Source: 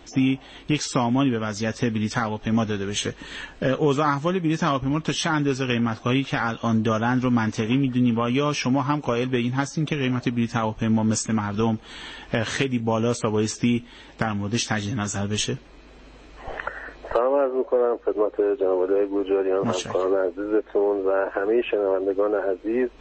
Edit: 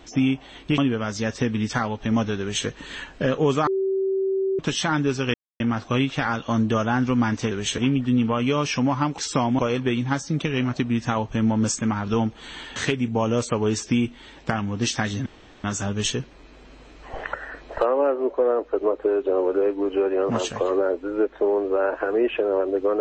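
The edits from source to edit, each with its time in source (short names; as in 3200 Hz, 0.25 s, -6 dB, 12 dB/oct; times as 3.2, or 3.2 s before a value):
0.78–1.19 move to 9.06
2.81–3.08 copy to 7.66
4.08–5 bleep 385 Hz -20 dBFS
5.75 insert silence 0.26 s
12.23–12.48 cut
14.98 insert room tone 0.38 s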